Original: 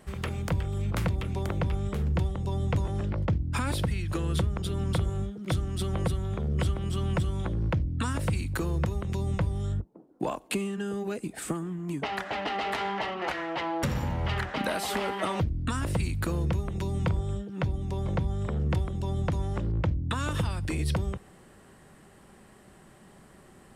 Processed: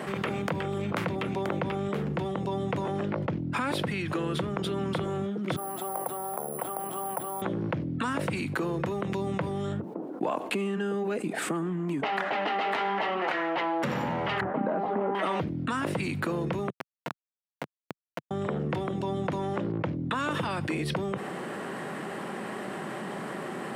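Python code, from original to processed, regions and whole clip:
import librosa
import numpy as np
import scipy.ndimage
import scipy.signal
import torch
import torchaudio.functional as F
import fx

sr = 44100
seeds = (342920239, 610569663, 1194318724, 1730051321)

y = fx.chain(x, sr, fx.bandpass_q(hz=810.0, q=3.7),
    fx.resample_bad(factor=4, down='none', up='zero_stuff'), at=(5.56, 7.42))
y = fx.chain(y, sr, fx.lowpass(hz=1000.0, slope=12),
    fx.tilt_eq(slope=-2.0), at=(14.41, 15.15))
y = fx.chain(y, sr, fx.highpass(hz=1000.0, slope=6),
    fx.schmitt(flips_db=-31.5), at=(16.7, 18.31))
y = scipy.signal.sosfilt(scipy.signal.butter(4, 150.0, 'highpass', fs=sr, output='sos'), y)
y = fx.bass_treble(y, sr, bass_db=-5, treble_db=-12)
y = fx.env_flatten(y, sr, amount_pct=70)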